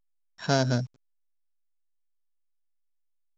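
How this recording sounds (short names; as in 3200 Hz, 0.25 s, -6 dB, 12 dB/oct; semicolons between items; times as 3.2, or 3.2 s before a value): a buzz of ramps at a fixed pitch in blocks of 8 samples; random-step tremolo 2.7 Hz; a quantiser's noise floor 10-bit, dither none; A-law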